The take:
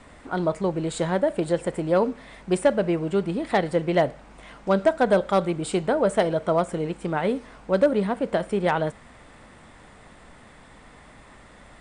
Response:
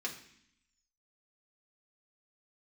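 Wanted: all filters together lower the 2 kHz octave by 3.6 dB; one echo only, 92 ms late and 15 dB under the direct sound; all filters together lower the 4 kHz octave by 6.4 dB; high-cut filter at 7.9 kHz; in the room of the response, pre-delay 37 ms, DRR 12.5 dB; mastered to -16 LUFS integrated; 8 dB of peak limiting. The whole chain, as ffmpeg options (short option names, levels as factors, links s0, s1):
-filter_complex "[0:a]lowpass=7900,equalizer=f=2000:t=o:g=-3.5,equalizer=f=4000:t=o:g=-7,alimiter=limit=0.126:level=0:latency=1,aecho=1:1:92:0.178,asplit=2[s0][s1];[1:a]atrim=start_sample=2205,adelay=37[s2];[s1][s2]afir=irnorm=-1:irlink=0,volume=0.188[s3];[s0][s3]amix=inputs=2:normalize=0,volume=3.98"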